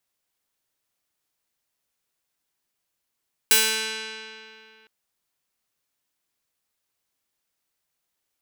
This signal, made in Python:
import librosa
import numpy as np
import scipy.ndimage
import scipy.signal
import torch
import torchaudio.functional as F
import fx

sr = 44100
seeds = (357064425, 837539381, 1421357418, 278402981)

y = fx.pluck(sr, length_s=1.36, note=57, decay_s=2.63, pick=0.35, brightness='bright')